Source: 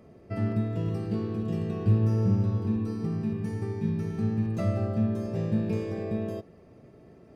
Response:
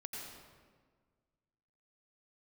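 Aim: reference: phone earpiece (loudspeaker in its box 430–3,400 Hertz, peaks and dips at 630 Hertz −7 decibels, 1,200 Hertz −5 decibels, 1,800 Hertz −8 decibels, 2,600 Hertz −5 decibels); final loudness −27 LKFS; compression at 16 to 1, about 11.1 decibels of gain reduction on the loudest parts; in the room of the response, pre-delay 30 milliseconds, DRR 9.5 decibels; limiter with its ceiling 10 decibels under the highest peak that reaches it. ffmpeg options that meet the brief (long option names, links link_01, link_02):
-filter_complex "[0:a]acompressor=threshold=-29dB:ratio=16,alimiter=level_in=8dB:limit=-24dB:level=0:latency=1,volume=-8dB,asplit=2[link_01][link_02];[1:a]atrim=start_sample=2205,adelay=30[link_03];[link_02][link_03]afir=irnorm=-1:irlink=0,volume=-8dB[link_04];[link_01][link_04]amix=inputs=2:normalize=0,highpass=430,equalizer=frequency=630:width_type=q:width=4:gain=-7,equalizer=frequency=1200:width_type=q:width=4:gain=-5,equalizer=frequency=1800:width_type=q:width=4:gain=-8,equalizer=frequency=2600:width_type=q:width=4:gain=-5,lowpass=frequency=3400:width=0.5412,lowpass=frequency=3400:width=1.3066,volume=22.5dB"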